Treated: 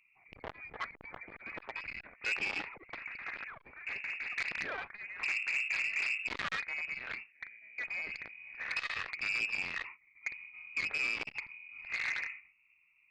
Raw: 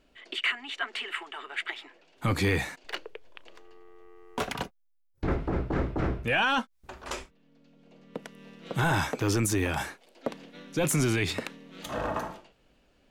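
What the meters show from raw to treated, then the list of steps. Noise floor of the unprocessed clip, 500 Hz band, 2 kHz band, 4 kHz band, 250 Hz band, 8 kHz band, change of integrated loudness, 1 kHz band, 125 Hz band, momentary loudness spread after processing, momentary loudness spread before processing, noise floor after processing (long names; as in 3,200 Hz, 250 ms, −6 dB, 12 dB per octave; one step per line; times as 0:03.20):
−67 dBFS, −19.0 dB, −1.0 dB, −8.5 dB, −24.0 dB, −17.0 dB, −6.0 dB, −12.5 dB, −29.0 dB, 14 LU, 18 LU, −69 dBFS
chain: adaptive Wiener filter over 41 samples
high-pass filter 74 Hz 12 dB per octave
dynamic equaliser 690 Hz, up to +6 dB, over −45 dBFS, Q 0.91
brickwall limiter −24 dBFS, peak gain reduction 10.5 dB
delay with pitch and tempo change per echo 168 ms, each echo +6 semitones, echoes 3, each echo −6 dB
voice inversion scrambler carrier 2,700 Hz
saturating transformer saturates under 2,600 Hz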